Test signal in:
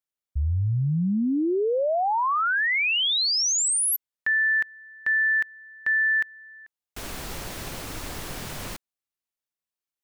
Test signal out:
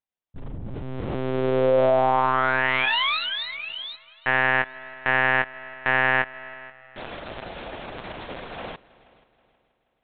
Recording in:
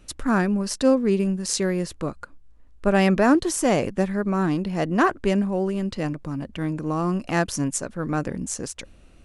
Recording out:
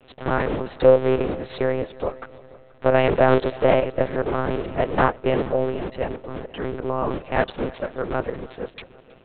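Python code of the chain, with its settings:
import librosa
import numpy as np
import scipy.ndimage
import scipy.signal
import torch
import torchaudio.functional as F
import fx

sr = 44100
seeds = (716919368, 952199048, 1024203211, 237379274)

y = fx.cycle_switch(x, sr, every=3, mode='muted')
y = fx.peak_eq(y, sr, hz=510.0, db=9.0, octaves=1.5)
y = fx.lpc_monotone(y, sr, seeds[0], pitch_hz=130.0, order=8)
y = fx.low_shelf(y, sr, hz=260.0, db=-12.0)
y = fx.echo_heads(y, sr, ms=160, heads='second and third', feedback_pct=41, wet_db=-23)
y = F.gain(torch.from_numpy(y), 2.5).numpy()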